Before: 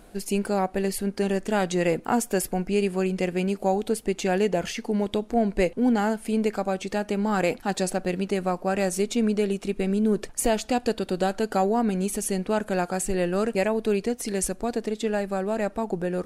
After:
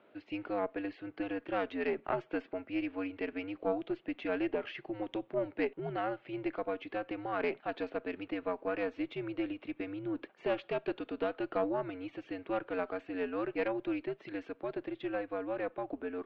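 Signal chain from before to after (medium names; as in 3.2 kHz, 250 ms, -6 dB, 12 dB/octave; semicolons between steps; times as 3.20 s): mistuned SSB -93 Hz 380–3300 Hz; Chebyshev shaper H 2 -13 dB, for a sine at -12 dBFS; trim -8 dB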